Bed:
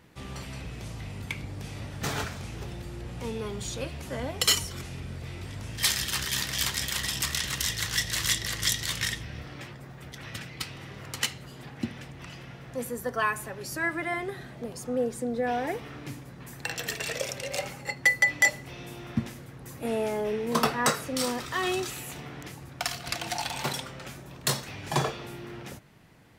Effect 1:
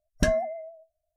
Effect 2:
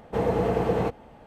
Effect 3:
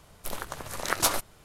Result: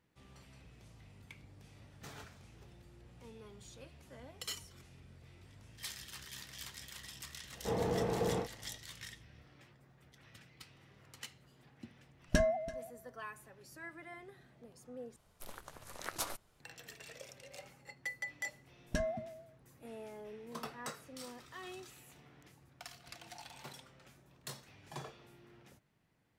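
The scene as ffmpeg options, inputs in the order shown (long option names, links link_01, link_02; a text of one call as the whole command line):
ffmpeg -i bed.wav -i cue0.wav -i cue1.wav -i cue2.wav -filter_complex "[1:a]asplit=2[link_01][link_02];[0:a]volume=-19.5dB[link_03];[2:a]asplit=2[link_04][link_05];[link_05]adelay=44,volume=-5dB[link_06];[link_04][link_06]amix=inputs=2:normalize=0[link_07];[link_01]aecho=1:1:334:0.112[link_08];[link_02]acontrast=65[link_09];[link_03]asplit=2[link_10][link_11];[link_10]atrim=end=15.164[link_12];[3:a]atrim=end=1.44,asetpts=PTS-STARTPTS,volume=-14.5dB[link_13];[link_11]atrim=start=16.596[link_14];[link_07]atrim=end=1.26,asetpts=PTS-STARTPTS,volume=-11dB,afade=type=in:duration=0.004:curve=hsin,afade=type=out:start_time=1.256:duration=0.004:curve=hsin,adelay=7520[link_15];[link_08]atrim=end=1.16,asetpts=PTS-STARTPTS,volume=-6dB,afade=type=in:duration=0.004:curve=hsin,afade=type=out:start_time=1.156:duration=0.004:curve=hsin,adelay=12120[link_16];[link_09]atrim=end=1.16,asetpts=PTS-STARTPTS,volume=-18dB,afade=type=in:duration=0.004:curve=hsin,afade=type=out:start_time=1.156:duration=0.004:curve=hsin,adelay=18720[link_17];[link_12][link_13]acrossfade=duration=0.004:curve1=hsin:curve2=hsin[link_18];[link_18][link_14]acrossfade=duration=0.004:curve1=hsin:curve2=hsin[link_19];[link_19][link_15][link_16][link_17]amix=inputs=4:normalize=0" out.wav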